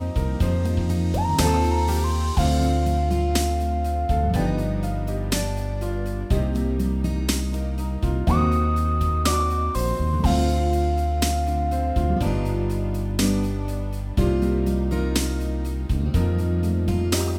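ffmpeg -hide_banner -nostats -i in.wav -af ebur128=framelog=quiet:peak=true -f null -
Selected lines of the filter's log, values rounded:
Integrated loudness:
  I:         -23.1 LUFS
  Threshold: -33.1 LUFS
Loudness range:
  LRA:         2.9 LU
  Threshold: -43.1 LUFS
  LRA low:   -24.6 LUFS
  LRA high:  -21.8 LUFS
True peak:
  Peak:       -6.7 dBFS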